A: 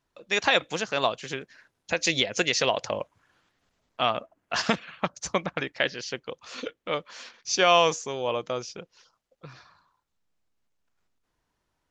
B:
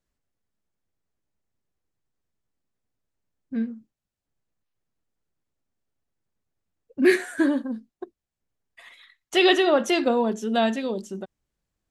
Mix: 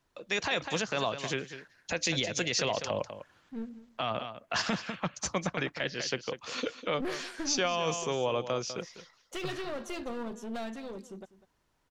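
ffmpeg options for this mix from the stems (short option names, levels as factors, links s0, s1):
-filter_complex "[0:a]acrossover=split=210[s0][s1];[s1]acompressor=threshold=0.0282:ratio=2[s2];[s0][s2]amix=inputs=2:normalize=0,volume=1.33,asplit=2[s3][s4];[s4]volume=0.224[s5];[1:a]alimiter=limit=0.2:level=0:latency=1:release=364,aeval=exprs='clip(val(0),-1,0.0316)':c=same,volume=0.316,asplit=2[s6][s7];[s7]volume=0.141[s8];[s5][s8]amix=inputs=2:normalize=0,aecho=0:1:199:1[s9];[s3][s6][s9]amix=inputs=3:normalize=0,alimiter=limit=0.112:level=0:latency=1:release=13"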